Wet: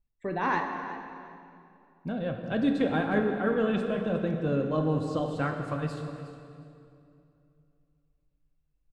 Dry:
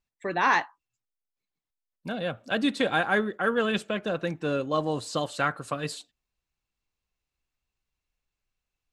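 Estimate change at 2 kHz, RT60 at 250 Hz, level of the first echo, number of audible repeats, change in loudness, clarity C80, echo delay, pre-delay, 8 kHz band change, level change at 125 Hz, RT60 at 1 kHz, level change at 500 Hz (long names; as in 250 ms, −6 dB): −7.0 dB, 3.0 s, −14.0 dB, 2, −1.5 dB, 5.5 dB, 361 ms, 10 ms, below −10 dB, +5.0 dB, 2.5 s, −0.5 dB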